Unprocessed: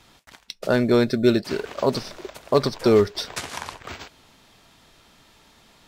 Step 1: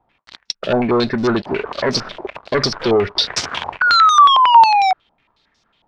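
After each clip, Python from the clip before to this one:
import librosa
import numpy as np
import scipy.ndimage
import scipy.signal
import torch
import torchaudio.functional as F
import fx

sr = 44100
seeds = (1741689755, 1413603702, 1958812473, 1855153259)

y = fx.spec_paint(x, sr, seeds[0], shape='fall', start_s=3.81, length_s=1.12, low_hz=740.0, high_hz=1500.0, level_db=-13.0)
y = fx.leveller(y, sr, passes=3)
y = fx.filter_held_lowpass(y, sr, hz=11.0, low_hz=820.0, high_hz=5500.0)
y = y * librosa.db_to_amplitude(-5.5)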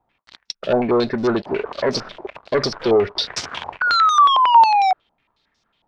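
y = fx.dynamic_eq(x, sr, hz=520.0, q=0.86, threshold_db=-27.0, ratio=4.0, max_db=6)
y = y * librosa.db_to_amplitude(-5.5)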